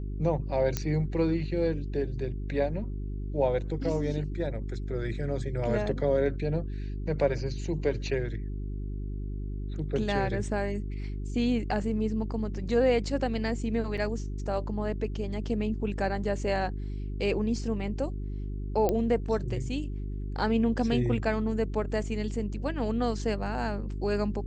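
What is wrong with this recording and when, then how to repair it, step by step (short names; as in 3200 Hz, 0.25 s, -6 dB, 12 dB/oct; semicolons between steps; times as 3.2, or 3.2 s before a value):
hum 50 Hz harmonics 8 -34 dBFS
0.77 pop -13 dBFS
13.97–13.98 gap 6.5 ms
18.89 pop -14 dBFS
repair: de-click; de-hum 50 Hz, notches 8; interpolate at 13.97, 6.5 ms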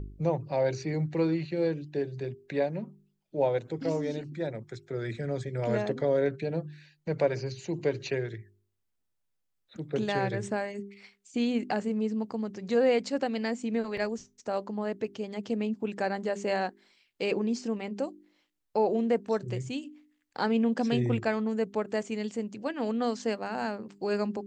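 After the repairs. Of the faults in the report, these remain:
none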